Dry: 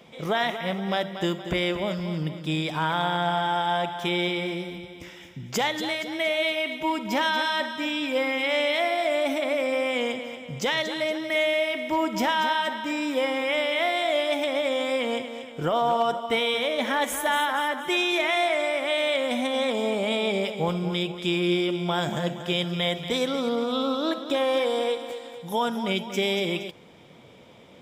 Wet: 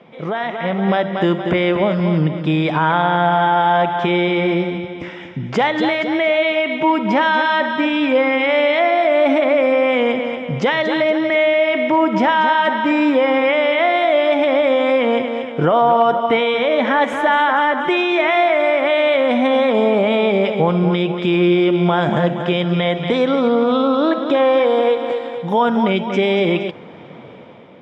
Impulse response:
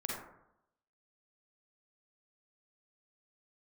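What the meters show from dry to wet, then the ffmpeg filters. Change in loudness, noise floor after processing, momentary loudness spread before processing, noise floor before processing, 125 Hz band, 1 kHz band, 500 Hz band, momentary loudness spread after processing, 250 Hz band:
+9.5 dB, -34 dBFS, 6 LU, -45 dBFS, +11.0 dB, +10.5 dB, +10.5 dB, 5 LU, +11.0 dB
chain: -af "alimiter=limit=0.0944:level=0:latency=1:release=134,dynaudnorm=f=200:g=7:m=2.51,highpass=120,lowpass=2100,volume=2.11"

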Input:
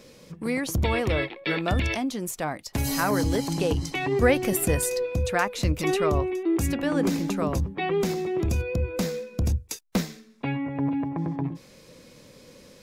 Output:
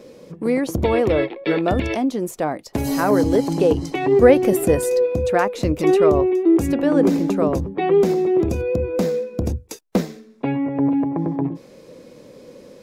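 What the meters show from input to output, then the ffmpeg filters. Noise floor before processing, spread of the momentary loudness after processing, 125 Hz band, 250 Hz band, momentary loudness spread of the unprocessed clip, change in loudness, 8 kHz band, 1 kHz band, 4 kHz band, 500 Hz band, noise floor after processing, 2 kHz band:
-52 dBFS, 10 LU, +1.5 dB, +8.0 dB, 7 LU, +7.0 dB, -2.5 dB, +5.5 dB, -1.5 dB, +10.0 dB, -46 dBFS, +0.5 dB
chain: -af "equalizer=f=420:w=0.5:g=13,volume=0.75"

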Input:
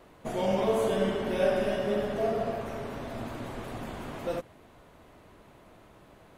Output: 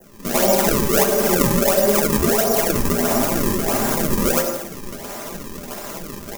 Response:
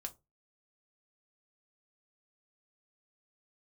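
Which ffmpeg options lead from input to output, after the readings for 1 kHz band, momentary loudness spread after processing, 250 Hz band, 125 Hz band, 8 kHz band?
+12.0 dB, 16 LU, +13.0 dB, +13.0 dB, +28.5 dB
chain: -filter_complex "[0:a]acompressor=threshold=0.0126:ratio=6,lowshelf=f=160:g=-10.5,aecho=1:1:100|170|219|253.3|277.3:0.631|0.398|0.251|0.158|0.1,acrusher=samples=35:mix=1:aa=0.000001:lfo=1:lforange=56:lforate=1.5,aexciter=amount=3:drive=4:freq=5300,adynamicequalizer=threshold=0.00158:dfrequency=3600:dqfactor=0.7:tfrequency=3600:tqfactor=0.7:attack=5:release=100:ratio=0.375:range=2:mode=cutabove:tftype=bell,flanger=delay=5.8:depth=6.6:regen=44:speed=1.5:shape=sinusoidal,aecho=1:1:5:0.45,dynaudnorm=f=110:g=5:m=5.01,asplit=2[s0][s1];[1:a]atrim=start_sample=2205[s2];[s1][s2]afir=irnorm=-1:irlink=0,volume=0.891[s3];[s0][s3]amix=inputs=2:normalize=0,volume=2.24"

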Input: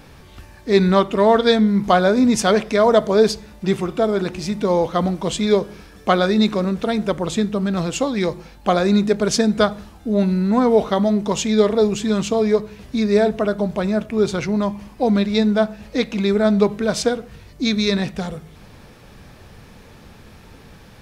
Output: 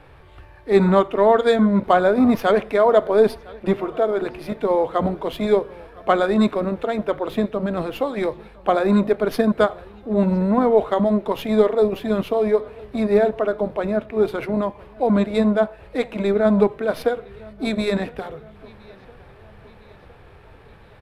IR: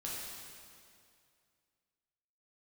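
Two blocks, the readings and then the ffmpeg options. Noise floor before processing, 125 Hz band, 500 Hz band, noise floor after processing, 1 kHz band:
-45 dBFS, -3.5 dB, -0.5 dB, -47 dBFS, -0.5 dB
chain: -filter_complex "[0:a]aemphasis=mode=reproduction:type=75fm,acrossover=split=230|4600[s0][s1][s2];[s0]aeval=exprs='0.224*(cos(1*acos(clip(val(0)/0.224,-1,1)))-cos(1*PI/2))+0.0316*(cos(3*acos(clip(val(0)/0.224,-1,1)))-cos(3*PI/2))+0.0447*(cos(7*acos(clip(val(0)/0.224,-1,1)))-cos(7*PI/2))':c=same[s3];[s1]aecho=1:1:1010|2020|3030|4040:0.0708|0.0375|0.0199|0.0105[s4];[s2]aeval=exprs='abs(val(0))':c=same[s5];[s3][s4][s5]amix=inputs=3:normalize=0,aresample=32000,aresample=44100,volume=0.891"

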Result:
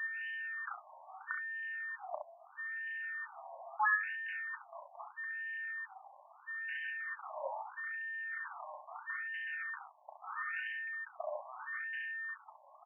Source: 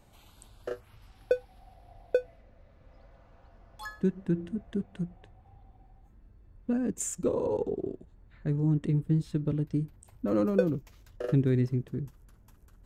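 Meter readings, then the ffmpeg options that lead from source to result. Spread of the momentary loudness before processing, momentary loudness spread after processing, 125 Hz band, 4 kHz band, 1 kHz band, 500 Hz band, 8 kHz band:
14 LU, 11 LU, under -40 dB, no reading, +5.5 dB, -17.5 dB, under -35 dB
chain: -af "highshelf=f=2200:g=-11.5,bandreject=f=1000:w=11,acompressor=threshold=0.00631:ratio=4,crystalizer=i=3:c=0,acrusher=bits=3:mode=log:mix=0:aa=0.000001,aeval=exprs='val(0)+0.00251*sin(2*PI*1800*n/s)':c=same,highpass=570,lowpass=7200,aecho=1:1:34|67:0.422|0.531,afftfilt=real='re*between(b*sr/1024,780*pow(2200/780,0.5+0.5*sin(2*PI*0.77*pts/sr))/1.41,780*pow(2200/780,0.5+0.5*sin(2*PI*0.77*pts/sr))*1.41)':imag='im*between(b*sr/1024,780*pow(2200/780,0.5+0.5*sin(2*PI*0.77*pts/sr))/1.41,780*pow(2200/780,0.5+0.5*sin(2*PI*0.77*pts/sr))*1.41)':win_size=1024:overlap=0.75,volume=6.68"

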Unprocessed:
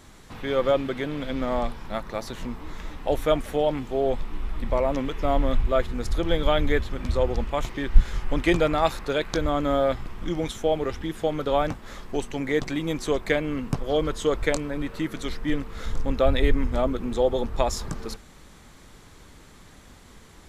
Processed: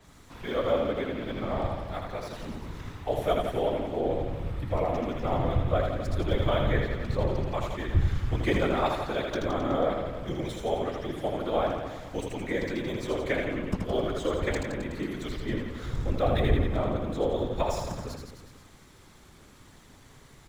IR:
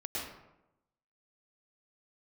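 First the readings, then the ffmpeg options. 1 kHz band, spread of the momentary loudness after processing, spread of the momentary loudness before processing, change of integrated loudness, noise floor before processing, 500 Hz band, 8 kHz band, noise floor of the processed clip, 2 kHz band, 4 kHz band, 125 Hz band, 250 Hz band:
-3.0 dB, 9 LU, 10 LU, -3.5 dB, -49 dBFS, -4.0 dB, -7.5 dB, -54 dBFS, -4.0 dB, -5.0 dB, +1.0 dB, -4.0 dB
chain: -filter_complex "[0:a]afftfilt=real='hypot(re,im)*cos(2*PI*random(0))':imag='hypot(re,im)*sin(2*PI*random(1))':win_size=512:overlap=0.75,aecho=1:1:80|168|264.8|371.3|488.4:0.631|0.398|0.251|0.158|0.1,acrossover=split=180|770|3600[s0][s1][s2][s3];[s3]acrusher=bits=2:mode=log:mix=0:aa=0.000001[s4];[s0][s1][s2][s4]amix=inputs=4:normalize=0,adynamicequalizer=threshold=0.00316:dfrequency=4600:dqfactor=0.7:tfrequency=4600:tqfactor=0.7:attack=5:release=100:ratio=0.375:range=4:mode=cutabove:tftype=highshelf"

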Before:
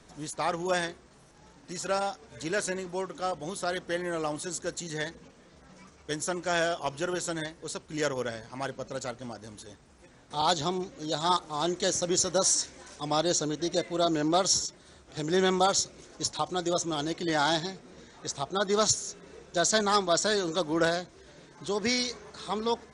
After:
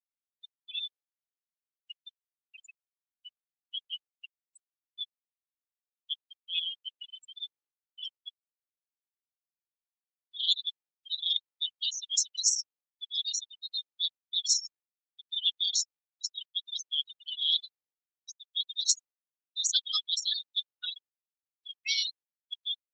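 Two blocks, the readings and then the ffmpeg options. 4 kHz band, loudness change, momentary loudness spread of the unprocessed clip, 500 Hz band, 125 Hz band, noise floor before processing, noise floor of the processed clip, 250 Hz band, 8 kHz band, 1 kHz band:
+3.5 dB, -2.0 dB, 13 LU, under -40 dB, under -40 dB, -57 dBFS, under -85 dBFS, under -40 dB, -3.0 dB, under -30 dB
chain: -af "highpass=f=3000:t=q:w=4.1,afftfilt=real='re*gte(hypot(re,im),0.126)':imag='im*gte(hypot(re,im),0.126)':win_size=1024:overlap=0.75,volume=0.891" -ar 48000 -c:a libopus -b:a 10k

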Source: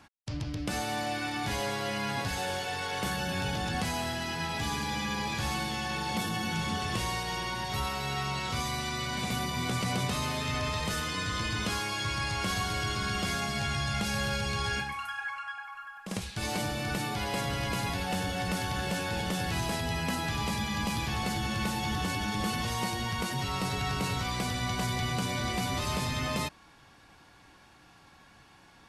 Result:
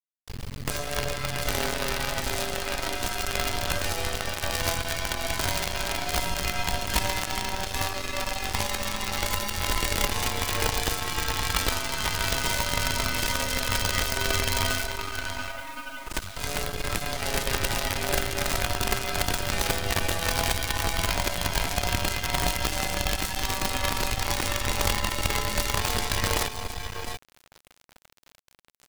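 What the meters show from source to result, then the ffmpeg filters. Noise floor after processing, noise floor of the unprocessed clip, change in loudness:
-59 dBFS, -57 dBFS, +4.5 dB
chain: -af "aecho=1:1:683:0.631,afreqshift=-160,acrusher=bits=5:dc=4:mix=0:aa=0.000001,volume=1.68"

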